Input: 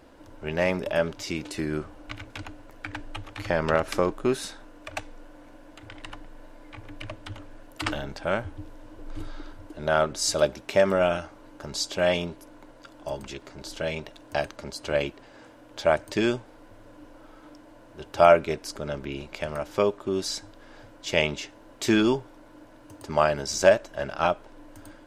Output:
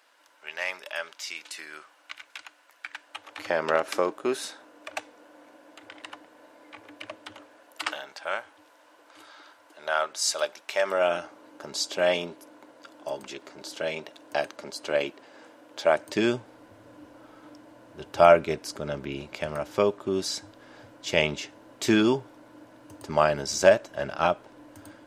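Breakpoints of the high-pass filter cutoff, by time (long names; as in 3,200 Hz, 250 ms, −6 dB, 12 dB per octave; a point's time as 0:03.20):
0:02.97 1,300 Hz
0:03.48 350 Hz
0:07.27 350 Hz
0:08.07 820 Hz
0:10.78 820 Hz
0:11.19 270 Hz
0:15.92 270 Hz
0:16.38 86 Hz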